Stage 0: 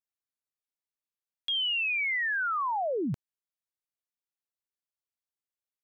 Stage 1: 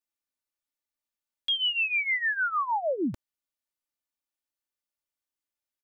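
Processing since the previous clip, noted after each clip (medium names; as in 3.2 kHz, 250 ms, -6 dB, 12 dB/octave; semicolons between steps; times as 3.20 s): comb 3.4 ms, depth 68%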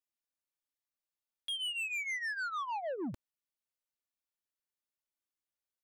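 saturation -28 dBFS, distortion -14 dB; trim -5.5 dB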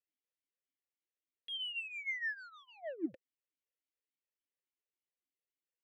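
talking filter e-i 3.5 Hz; trim +7.5 dB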